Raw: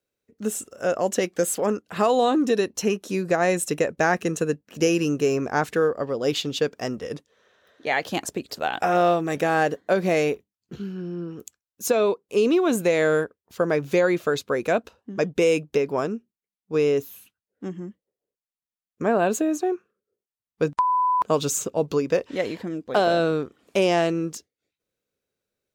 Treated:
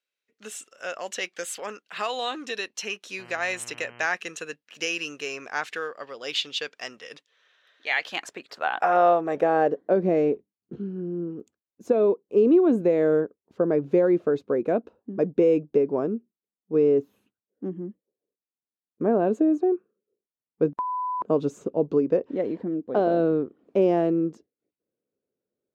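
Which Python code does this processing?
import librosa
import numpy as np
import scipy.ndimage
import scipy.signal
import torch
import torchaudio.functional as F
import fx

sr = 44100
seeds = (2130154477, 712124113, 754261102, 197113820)

y = fx.filter_sweep_bandpass(x, sr, from_hz=2800.0, to_hz=310.0, start_s=7.89, end_s=10.03, q=1.1)
y = fx.dmg_buzz(y, sr, base_hz=120.0, harmonics=26, level_db=-52.0, tilt_db=-2, odd_only=False, at=(3.18, 4.05), fade=0.02)
y = y * 10.0 ** (3.0 / 20.0)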